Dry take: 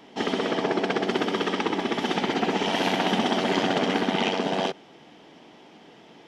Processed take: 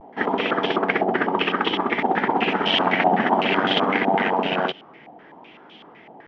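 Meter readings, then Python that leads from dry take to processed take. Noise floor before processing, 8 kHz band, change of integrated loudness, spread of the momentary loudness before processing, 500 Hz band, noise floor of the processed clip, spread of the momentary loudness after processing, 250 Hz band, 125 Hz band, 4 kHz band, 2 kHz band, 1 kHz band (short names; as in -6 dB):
-51 dBFS, under -15 dB, +4.0 dB, 3 LU, +3.0 dB, -48 dBFS, 5 LU, +1.5 dB, +1.0 dB, +3.5 dB, +6.5 dB, +6.5 dB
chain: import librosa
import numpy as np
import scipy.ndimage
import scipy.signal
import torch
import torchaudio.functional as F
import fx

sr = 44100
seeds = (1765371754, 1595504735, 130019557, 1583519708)

y = fx.vibrato(x, sr, rate_hz=0.58, depth_cents=45.0)
y = fx.filter_held_lowpass(y, sr, hz=7.9, low_hz=780.0, high_hz=3200.0)
y = y * librosa.db_to_amplitude(1.0)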